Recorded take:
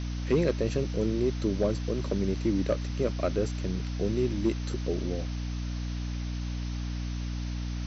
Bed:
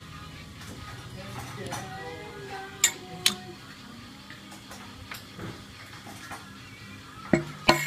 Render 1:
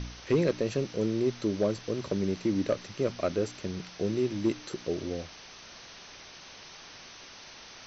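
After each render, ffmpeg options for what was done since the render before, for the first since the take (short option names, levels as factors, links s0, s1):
-af "bandreject=f=60:t=h:w=4,bandreject=f=120:t=h:w=4,bandreject=f=180:t=h:w=4,bandreject=f=240:t=h:w=4,bandreject=f=300:t=h:w=4"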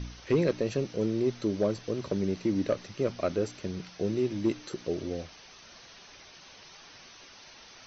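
-af "afftdn=nr=6:nf=-49"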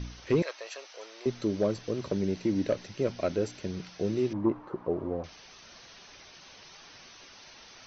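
-filter_complex "[0:a]asettb=1/sr,asplit=3[s0][s1][s2];[s0]atrim=end=0.424[s3];[s1]atrim=start=0.42:end=1.26,asetpts=PTS-STARTPTS,afade=t=in:d=0.004:c=qsin,afade=t=out:st=0.836:d=0.004:c=qsin,highpass=f=710:w=0.5412,highpass=f=710:w=1.3066[s4];[s2]atrim=start=1.256[s5];[s3][s4]acrossfade=d=0.004:c1=hsin:c2=qsin[s6];[s6][s5]acrossfade=d=0.004:c1=qsin:c2=hsin,asettb=1/sr,asplit=3[s7][s8][s9];[s7]atrim=end=2.164[s10];[s8]atrim=start=2.16:end=3.7,asetpts=PTS-STARTPTS,afade=t=in:d=0.004:c=qsin,afade=t=out:st=1.536:d=0.004:c=qsin,bandreject=f=1200:w=9.5[s11];[s9]atrim=start=3.696[s12];[s10][s11]acrossfade=d=0.004:c1=hsin:c2=qsin[s13];[s13][s12]acrossfade=d=0.004:c1=qsin:c2=hsin,asettb=1/sr,asplit=3[s14][s15][s16];[s14]atrim=end=4.334[s17];[s15]atrim=start=4.33:end=5.24,asetpts=PTS-STARTPTS,afade=t=in:d=0.004:c=qsin,afade=t=out:st=0.906:d=0.004:c=qsin,lowpass=f=1000:t=q:w=3.9[s18];[s16]atrim=start=5.236[s19];[s17][s18]acrossfade=d=0.004:c1=hsin:c2=qsin[s20];[s20][s19]acrossfade=d=0.004:c1=qsin:c2=hsin"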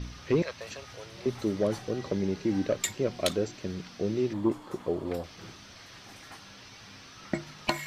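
-filter_complex "[1:a]volume=0.355[s0];[0:a][s0]amix=inputs=2:normalize=0"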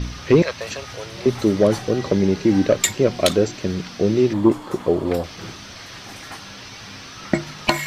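-af "volume=3.76,alimiter=limit=0.891:level=0:latency=1"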